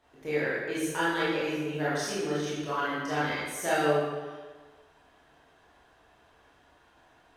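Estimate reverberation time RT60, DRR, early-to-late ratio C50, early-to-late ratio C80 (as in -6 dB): 1.4 s, -9.5 dB, -2.0 dB, 1.0 dB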